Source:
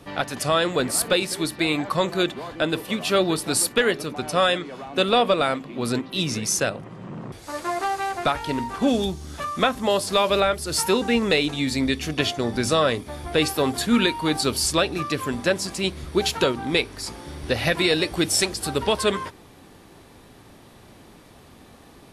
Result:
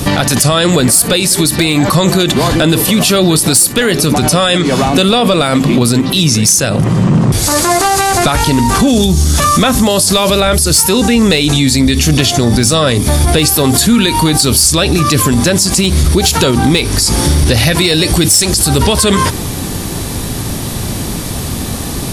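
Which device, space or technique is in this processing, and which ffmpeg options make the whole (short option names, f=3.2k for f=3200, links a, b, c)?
loud club master: -af "bass=f=250:g=10,treble=f=4k:g=13,acompressor=threshold=-24dB:ratio=2.5,asoftclip=type=hard:threshold=-15dB,alimiter=level_in=24.5dB:limit=-1dB:release=50:level=0:latency=1,volume=-1dB"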